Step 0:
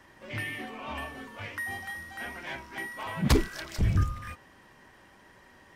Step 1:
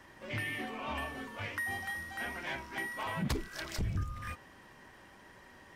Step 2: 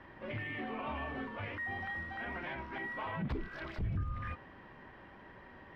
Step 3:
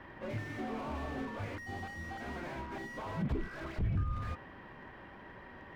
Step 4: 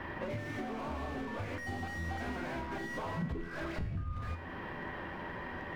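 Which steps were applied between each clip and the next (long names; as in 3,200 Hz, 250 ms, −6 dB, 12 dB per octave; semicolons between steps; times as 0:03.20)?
downward compressor 5 to 1, threshold −32 dBFS, peak gain reduction 13.5 dB
brickwall limiter −33 dBFS, peak gain reduction 9.5 dB; high-frequency loss of the air 390 metres; level +4 dB
slew-rate limiting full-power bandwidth 6.5 Hz; level +3 dB
downward compressor, threshold −45 dBFS, peak gain reduction 15 dB; tuned comb filter 84 Hz, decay 0.74 s, harmonics all, mix 70%; level +17.5 dB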